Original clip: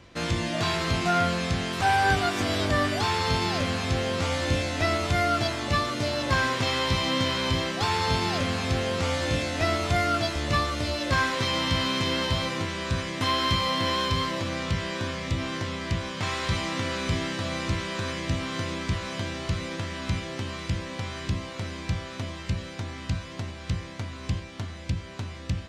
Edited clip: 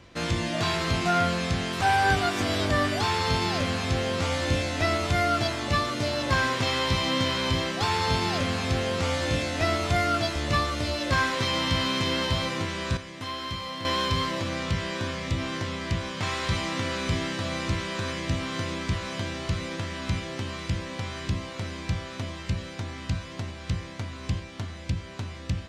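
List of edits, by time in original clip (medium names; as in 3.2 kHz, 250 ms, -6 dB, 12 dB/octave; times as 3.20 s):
12.97–13.85 s: gain -9 dB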